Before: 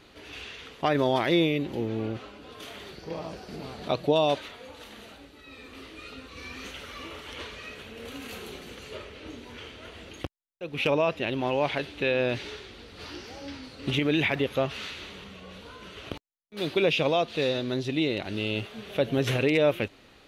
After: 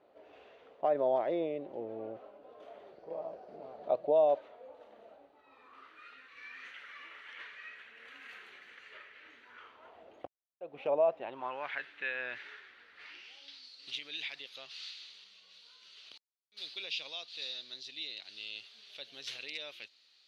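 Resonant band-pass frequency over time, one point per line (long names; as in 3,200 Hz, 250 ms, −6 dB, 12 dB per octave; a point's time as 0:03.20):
resonant band-pass, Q 3.4
0:05.15 620 Hz
0:06.19 1,800 Hz
0:09.38 1,800 Hz
0:10.05 680 Hz
0:11.12 680 Hz
0:11.73 1,700 Hz
0:12.93 1,700 Hz
0:13.63 4,500 Hz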